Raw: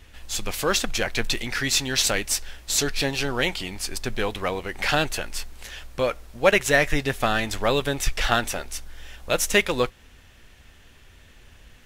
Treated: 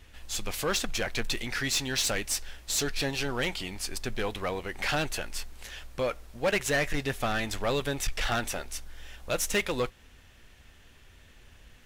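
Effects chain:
soft clipping −16.5 dBFS, distortion −12 dB
level −4 dB

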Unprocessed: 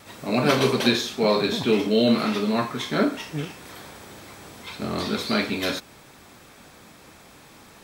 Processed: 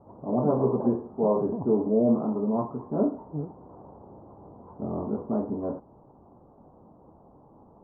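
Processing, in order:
Butterworth low-pass 1,000 Hz 48 dB per octave
level −2.5 dB

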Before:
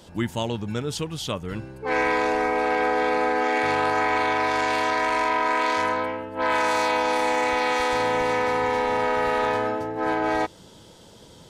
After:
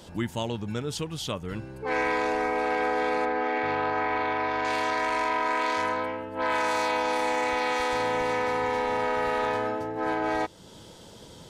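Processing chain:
in parallel at 0 dB: downward compressor, threshold −38 dBFS, peak gain reduction 17.5 dB
0:03.25–0:04.65: on the sum: high-frequency loss of the air 200 metres
level −5 dB

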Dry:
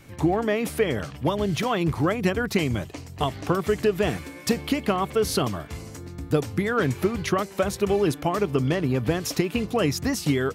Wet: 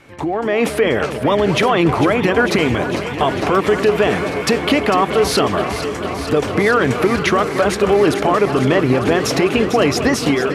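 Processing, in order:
low-pass filter 12,000 Hz 24 dB per octave
bass and treble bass −11 dB, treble −10 dB
brickwall limiter −21.5 dBFS, peak gain reduction 10.5 dB
automatic gain control gain up to 8 dB
delay that swaps between a low-pass and a high-pass 225 ms, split 1,300 Hz, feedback 90%, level −10 dB
level +7.5 dB

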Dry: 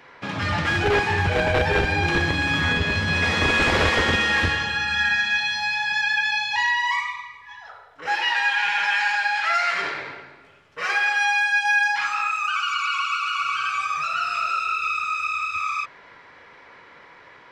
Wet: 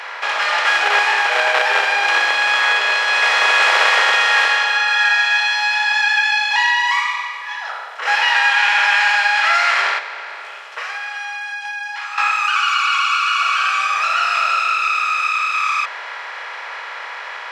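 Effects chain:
compressor on every frequency bin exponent 0.6
high-pass filter 630 Hz 24 dB per octave
0:09.98–0:12.18: downward compressor 6 to 1, threshold −29 dBFS, peak gain reduction 13.5 dB
level +3.5 dB

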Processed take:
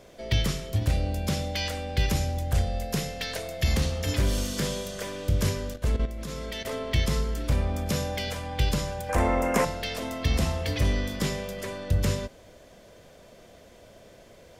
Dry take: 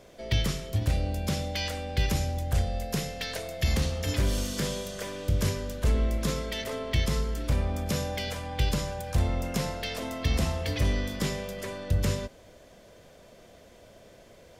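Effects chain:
0:05.69–0:06.65: output level in coarse steps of 12 dB
0:09.09–0:09.65: graphic EQ with 10 bands 125 Hz −12 dB, 250 Hz +7 dB, 500 Hz +6 dB, 1,000 Hz +10 dB, 2,000 Hz +9 dB, 4,000 Hz −9 dB, 8,000 Hz +5 dB
level +1.5 dB

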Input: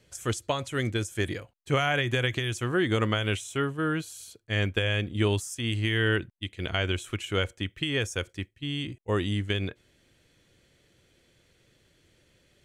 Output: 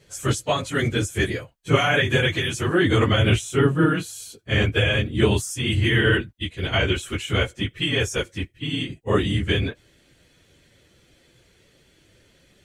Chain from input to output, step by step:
random phases in long frames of 50 ms
0:03.18–0:03.86: low-shelf EQ 410 Hz +6 dB
level +6.5 dB

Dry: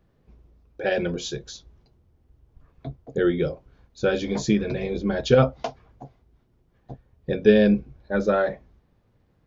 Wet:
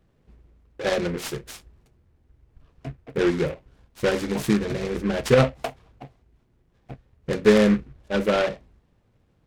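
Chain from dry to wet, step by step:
short delay modulated by noise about 1,500 Hz, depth 0.075 ms

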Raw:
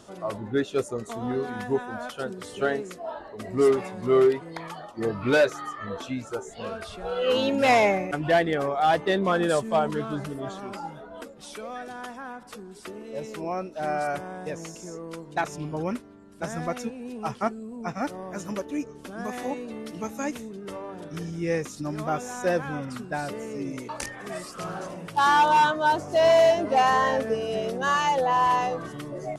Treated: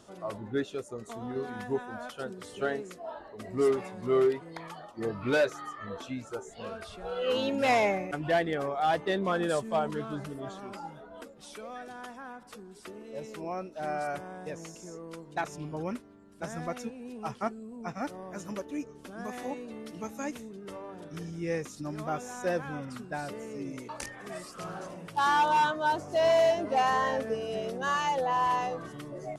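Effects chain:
0:00.72–0:01.36: downward compressor 2 to 1, threshold −31 dBFS, peak gain reduction 6.5 dB
level −5.5 dB

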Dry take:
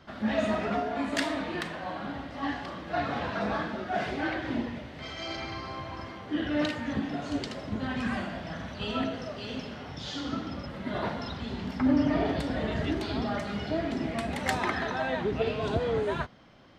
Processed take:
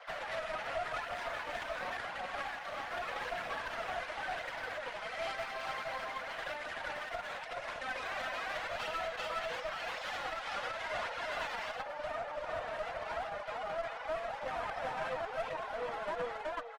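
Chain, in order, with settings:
spectral envelope flattened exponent 0.3
low-pass filter 1,900 Hz 12 dB per octave, from 0:11.76 1,000 Hz
reverb reduction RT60 1.7 s
repeating echo 379 ms, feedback 17%, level −3 dB
downward compressor 2 to 1, threshold −40 dBFS, peak gain reduction 10.5 dB
brickwall limiter −34.5 dBFS, peak gain reduction 10.5 dB
Chebyshev high-pass with heavy ripple 480 Hz, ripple 3 dB
flanger 0.9 Hz, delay 0.1 ms, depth 5.1 ms, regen +35%
asymmetric clip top −54.5 dBFS, bottom −41.5 dBFS
level +15 dB
Opus 20 kbit/s 48,000 Hz

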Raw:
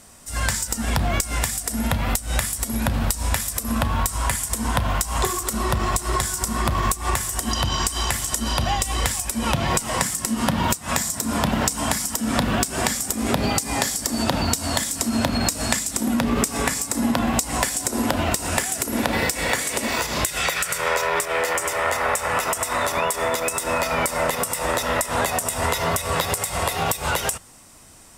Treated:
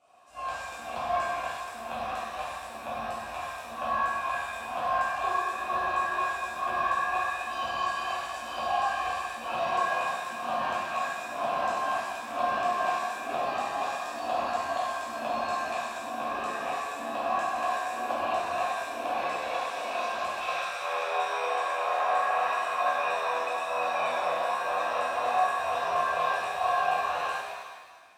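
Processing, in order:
formant filter a
reverb with rising layers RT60 1.4 s, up +7 semitones, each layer −8 dB, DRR −9.5 dB
level −6 dB

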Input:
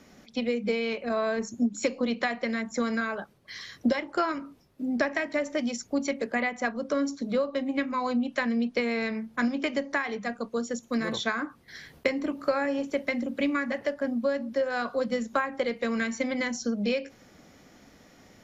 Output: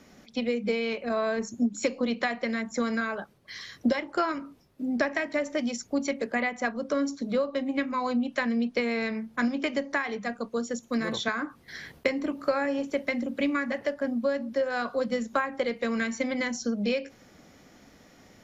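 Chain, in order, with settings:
0:11.28–0:11.92: multiband upward and downward compressor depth 40%

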